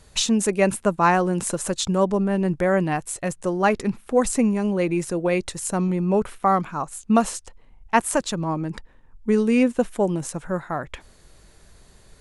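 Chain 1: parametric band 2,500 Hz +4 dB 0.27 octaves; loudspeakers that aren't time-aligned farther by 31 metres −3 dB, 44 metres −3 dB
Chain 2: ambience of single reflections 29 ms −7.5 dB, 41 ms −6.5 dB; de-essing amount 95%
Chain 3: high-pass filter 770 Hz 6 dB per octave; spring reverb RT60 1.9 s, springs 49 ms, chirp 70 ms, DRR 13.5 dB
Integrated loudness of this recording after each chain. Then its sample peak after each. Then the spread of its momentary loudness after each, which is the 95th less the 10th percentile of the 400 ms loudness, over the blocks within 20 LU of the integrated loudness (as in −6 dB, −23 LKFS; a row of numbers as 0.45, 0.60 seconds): −19.5, −22.5, −27.0 LKFS; −3.5, −7.0, −6.0 dBFS; 9, 9, 10 LU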